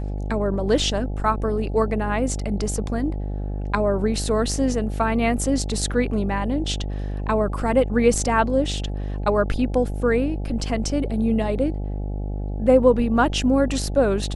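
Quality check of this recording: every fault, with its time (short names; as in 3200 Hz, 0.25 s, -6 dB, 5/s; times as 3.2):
buzz 50 Hz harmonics 17 -27 dBFS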